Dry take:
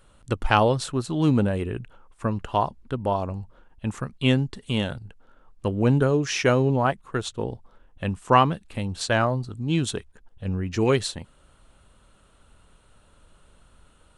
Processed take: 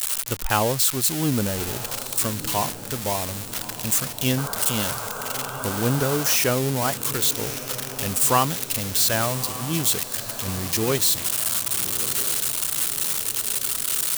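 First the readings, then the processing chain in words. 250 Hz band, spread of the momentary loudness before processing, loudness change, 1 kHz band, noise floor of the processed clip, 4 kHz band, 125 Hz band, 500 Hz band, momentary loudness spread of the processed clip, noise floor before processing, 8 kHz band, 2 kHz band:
-3.0 dB, 13 LU, +2.5 dB, -1.5 dB, -34 dBFS, +7.5 dB, -3.0 dB, -2.5 dB, 8 LU, -58 dBFS, +17.5 dB, +1.0 dB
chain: switching spikes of -10 dBFS; painted sound noise, 4.37–6.36, 400–1600 Hz -31 dBFS; on a send: diffused feedback echo 1.238 s, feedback 59%, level -13 dB; on the sum: gain -3 dB

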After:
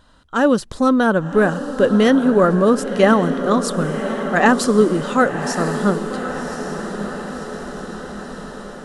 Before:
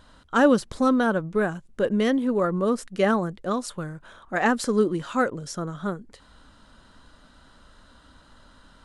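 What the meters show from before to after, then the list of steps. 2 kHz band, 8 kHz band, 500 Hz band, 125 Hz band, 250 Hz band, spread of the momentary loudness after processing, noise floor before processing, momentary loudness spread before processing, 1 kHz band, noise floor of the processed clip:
+7.5 dB, +8.5 dB, +8.0 dB, +9.0 dB, +7.5 dB, 16 LU, -55 dBFS, 12 LU, +7.5 dB, -37 dBFS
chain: notch 2200 Hz, Q 12; AGC gain up to 11 dB; diffused feedback echo 1.106 s, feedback 59%, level -9 dB

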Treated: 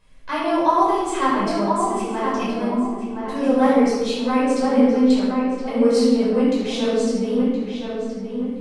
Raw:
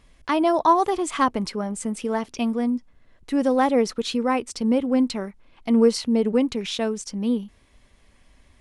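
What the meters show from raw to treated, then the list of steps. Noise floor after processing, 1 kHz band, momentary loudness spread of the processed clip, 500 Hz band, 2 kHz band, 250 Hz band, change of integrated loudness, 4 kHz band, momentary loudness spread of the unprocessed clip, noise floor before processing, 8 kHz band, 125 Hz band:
-30 dBFS, +3.0 dB, 11 LU, +3.5 dB, +3.0 dB, +4.0 dB, +3.0 dB, +1.0 dB, 9 LU, -58 dBFS, -0.5 dB, n/a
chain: bell 70 Hz -5 dB 1.6 oct; on a send: darkening echo 1.019 s, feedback 35%, low-pass 2400 Hz, level -4.5 dB; on the sum: shoebox room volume 710 m³, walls mixed, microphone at 5.2 m; gain -9 dB

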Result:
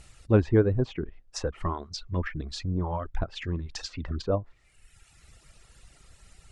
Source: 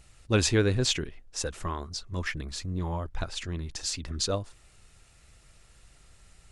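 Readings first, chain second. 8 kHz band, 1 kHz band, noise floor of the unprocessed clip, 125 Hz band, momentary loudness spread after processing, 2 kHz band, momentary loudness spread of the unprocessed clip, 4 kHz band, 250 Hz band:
-12.0 dB, +2.0 dB, -58 dBFS, +2.5 dB, 13 LU, -5.0 dB, 12 LU, -8.5 dB, +3.0 dB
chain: reverb removal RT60 1.1 s; treble ducked by the level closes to 940 Hz, closed at -27.5 dBFS; gain +4.5 dB

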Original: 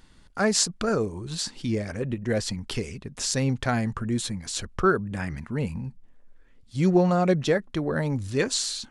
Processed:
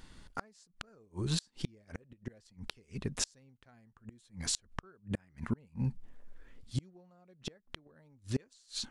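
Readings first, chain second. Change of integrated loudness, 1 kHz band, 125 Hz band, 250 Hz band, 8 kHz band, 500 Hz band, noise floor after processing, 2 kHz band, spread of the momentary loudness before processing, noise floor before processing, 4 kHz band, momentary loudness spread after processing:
-13.5 dB, -20.0 dB, -11.5 dB, -15.5 dB, -11.5 dB, -23.0 dB, -70 dBFS, -18.0 dB, 10 LU, -54 dBFS, -10.5 dB, 16 LU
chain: vocal rider within 4 dB 0.5 s; flipped gate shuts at -19 dBFS, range -35 dB; gain -1.5 dB

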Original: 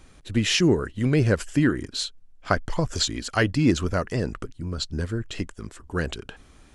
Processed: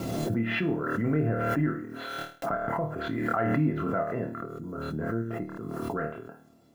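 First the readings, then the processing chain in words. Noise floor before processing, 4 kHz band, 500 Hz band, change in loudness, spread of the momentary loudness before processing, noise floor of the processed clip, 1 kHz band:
-53 dBFS, -16.0 dB, -3.5 dB, -5.0 dB, 13 LU, -57 dBFS, +1.0 dB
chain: HPF 130 Hz 24 dB/oct; low-pass opened by the level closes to 500 Hz, open at -19.5 dBFS; LPF 1700 Hz 24 dB/oct; in parallel at -1 dB: compressor 5:1, threshold -33 dBFS, peak gain reduction 16.5 dB; on the sum: limiter -12.5 dBFS, peak gain reduction 9 dB; bit-crush 11-bit; resonator 680 Hz, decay 0.19 s, harmonics all, mix 90%; on a send: flutter echo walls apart 4.5 m, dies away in 0.4 s; on the sum: backwards sustainer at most 21 dB/s; gain +8.5 dB

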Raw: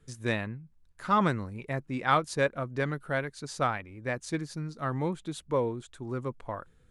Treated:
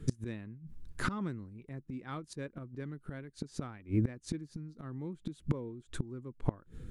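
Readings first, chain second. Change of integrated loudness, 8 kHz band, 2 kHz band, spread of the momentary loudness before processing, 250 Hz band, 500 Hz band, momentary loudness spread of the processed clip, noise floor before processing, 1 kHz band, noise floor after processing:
-8.5 dB, -7.0 dB, -13.0 dB, 13 LU, -4.0 dB, -13.5 dB, 11 LU, -61 dBFS, -16.5 dB, -65 dBFS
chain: resonant low shelf 450 Hz +9 dB, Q 1.5; flipped gate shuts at -26 dBFS, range -27 dB; gain +8 dB

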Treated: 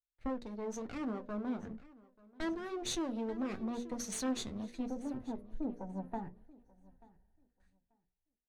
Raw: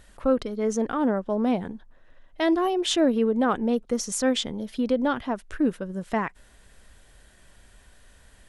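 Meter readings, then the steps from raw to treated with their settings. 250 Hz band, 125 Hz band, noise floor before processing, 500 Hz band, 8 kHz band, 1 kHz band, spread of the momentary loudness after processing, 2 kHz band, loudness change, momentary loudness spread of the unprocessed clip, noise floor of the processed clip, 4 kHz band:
-13.0 dB, -11.0 dB, -56 dBFS, -17.0 dB, -10.0 dB, -16.0 dB, 7 LU, -15.5 dB, -14.5 dB, 8 LU, under -85 dBFS, -14.5 dB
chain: minimum comb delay 0.47 ms; spectral gain 5.77–7.67, 670–1900 Hz +10 dB; gate with hold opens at -42 dBFS; notches 60/120/180/240/300/360/420/480/540/600 Hz; spectral gain 4.86–7.5, 990–9800 Hz -19 dB; dynamic EQ 2200 Hz, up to -4 dB, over -42 dBFS, Q 1.3; compressor, threshold -27 dBFS, peak gain reduction 9.5 dB; soft clip -22 dBFS, distortion -23 dB; flange 0.73 Hz, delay 6.2 ms, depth 5.7 ms, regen -53%; air absorption 54 m; on a send: feedback echo 0.886 s, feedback 36%, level -14 dB; on the sum: three-band expander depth 70%; gain -3 dB

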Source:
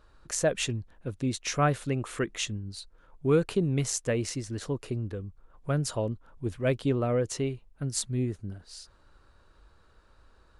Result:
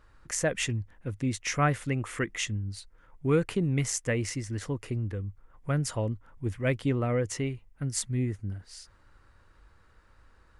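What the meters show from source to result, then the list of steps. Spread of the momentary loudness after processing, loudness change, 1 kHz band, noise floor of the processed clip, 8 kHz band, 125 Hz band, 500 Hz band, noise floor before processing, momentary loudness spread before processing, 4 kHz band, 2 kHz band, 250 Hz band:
11 LU, -0.5 dB, -0.5 dB, -60 dBFS, 0.0 dB, +1.0 dB, -2.5 dB, -61 dBFS, 14 LU, -1.5 dB, +3.0 dB, -0.5 dB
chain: thirty-one-band EQ 100 Hz +5 dB, 400 Hz -4 dB, 630 Hz -4 dB, 2000 Hz +8 dB, 4000 Hz -6 dB

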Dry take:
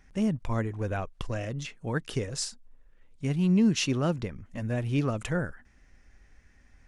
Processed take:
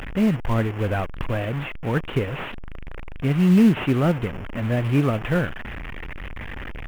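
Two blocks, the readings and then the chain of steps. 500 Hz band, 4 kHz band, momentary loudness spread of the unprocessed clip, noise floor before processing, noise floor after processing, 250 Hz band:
+7.5 dB, +0.5 dB, 12 LU, -60 dBFS, -33 dBFS, +7.5 dB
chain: delta modulation 16 kbps, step -34 dBFS; in parallel at -5 dB: short-mantissa float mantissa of 2-bit; on the sum: gain +3.5 dB

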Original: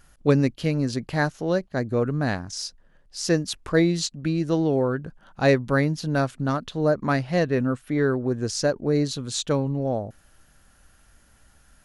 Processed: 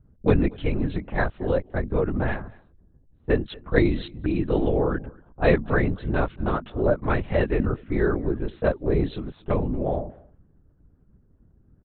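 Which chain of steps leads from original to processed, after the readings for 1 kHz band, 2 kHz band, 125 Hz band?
-1.0 dB, -1.0 dB, -1.5 dB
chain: LPC vocoder at 8 kHz whisper; low-pass opened by the level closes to 330 Hz, open at -19 dBFS; outdoor echo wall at 40 m, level -24 dB

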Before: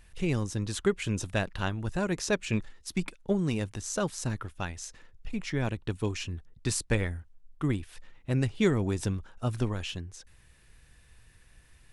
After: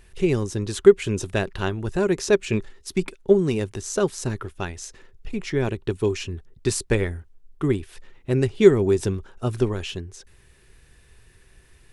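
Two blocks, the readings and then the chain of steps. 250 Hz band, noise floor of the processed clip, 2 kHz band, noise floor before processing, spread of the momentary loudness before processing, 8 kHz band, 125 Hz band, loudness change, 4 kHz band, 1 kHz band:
+6.5 dB, -55 dBFS, +4.0 dB, -59 dBFS, 10 LU, +4.0 dB, +4.0 dB, +8.5 dB, +4.0 dB, +4.0 dB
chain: bell 390 Hz +12.5 dB 0.31 oct; gain +4 dB

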